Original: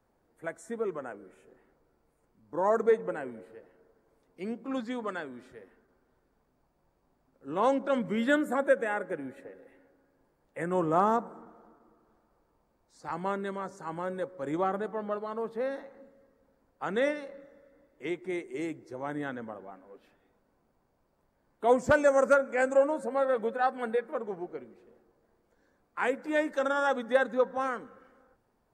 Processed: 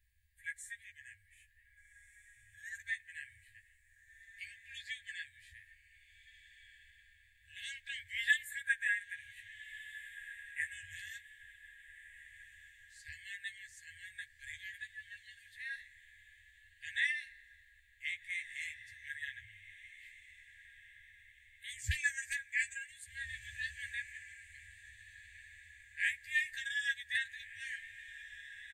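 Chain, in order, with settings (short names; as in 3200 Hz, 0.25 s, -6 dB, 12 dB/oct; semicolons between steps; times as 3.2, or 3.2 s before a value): bell 5500 Hz -9.5 dB 0.5 oct; doubler 14 ms -4.5 dB; on a send: diffused feedback echo 1.608 s, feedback 43%, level -14 dB; on the sum: FFT band-reject 110–1600 Hz; gain +3 dB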